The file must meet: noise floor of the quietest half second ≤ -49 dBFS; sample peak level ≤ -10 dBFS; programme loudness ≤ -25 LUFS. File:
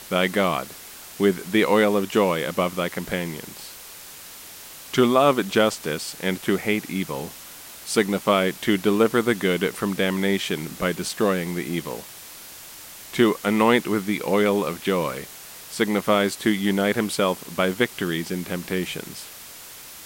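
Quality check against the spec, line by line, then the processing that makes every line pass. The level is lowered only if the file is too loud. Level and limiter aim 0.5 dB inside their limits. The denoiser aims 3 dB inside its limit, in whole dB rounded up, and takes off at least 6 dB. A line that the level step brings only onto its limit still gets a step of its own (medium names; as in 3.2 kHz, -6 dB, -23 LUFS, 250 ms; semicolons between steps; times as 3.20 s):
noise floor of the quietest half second -42 dBFS: fail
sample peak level -5.5 dBFS: fail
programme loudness -23.0 LUFS: fail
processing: noise reduction 8 dB, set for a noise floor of -42 dBFS; trim -2.5 dB; peak limiter -10.5 dBFS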